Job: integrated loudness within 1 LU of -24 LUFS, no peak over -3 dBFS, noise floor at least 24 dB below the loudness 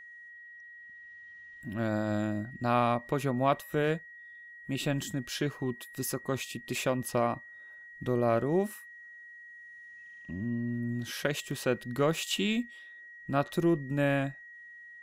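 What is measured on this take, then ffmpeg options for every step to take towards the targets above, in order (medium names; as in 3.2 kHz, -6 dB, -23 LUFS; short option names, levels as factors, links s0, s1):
steady tone 1.9 kHz; tone level -47 dBFS; loudness -31.5 LUFS; peak level -14.0 dBFS; loudness target -24.0 LUFS
-> -af "bandreject=f=1900:w=30"
-af "volume=2.37"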